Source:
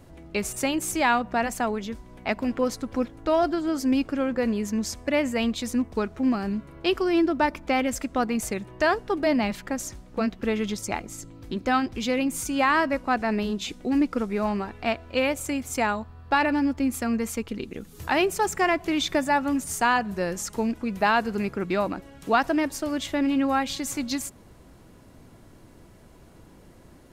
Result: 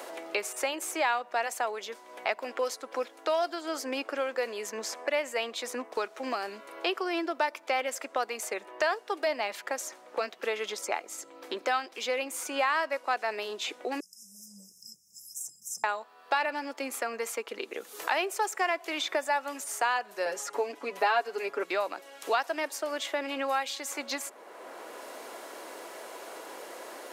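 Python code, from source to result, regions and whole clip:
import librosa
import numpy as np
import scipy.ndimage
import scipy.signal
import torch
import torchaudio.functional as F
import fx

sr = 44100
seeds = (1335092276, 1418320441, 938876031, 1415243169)

y = fx.chain(x, sr, fx.brickwall_bandstop(low_hz=190.0, high_hz=5000.0),
    fx.sustainer(db_per_s=140.0), at=(14.0, 15.84))
y = fx.chain(y, sr, fx.tilt_eq(slope=-2.0),
    fx.comb(ms=7.1, depth=0.99), at=(20.25, 21.63))
y = scipy.signal.sosfilt(scipy.signal.butter(4, 460.0, 'highpass', fs=sr, output='sos'), y)
y = fx.band_squash(y, sr, depth_pct=70)
y = y * 10.0 ** (-3.0 / 20.0)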